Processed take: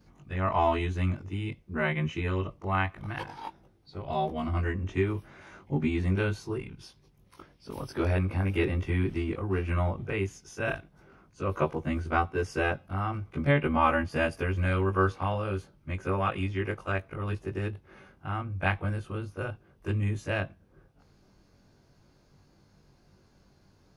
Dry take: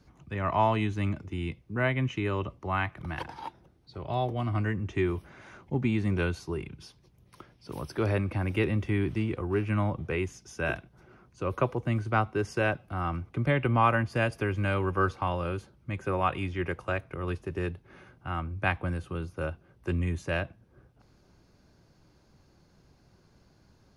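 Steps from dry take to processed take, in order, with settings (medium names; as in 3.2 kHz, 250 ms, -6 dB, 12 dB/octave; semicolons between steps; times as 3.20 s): short-time spectra conjugated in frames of 42 ms; trim +3 dB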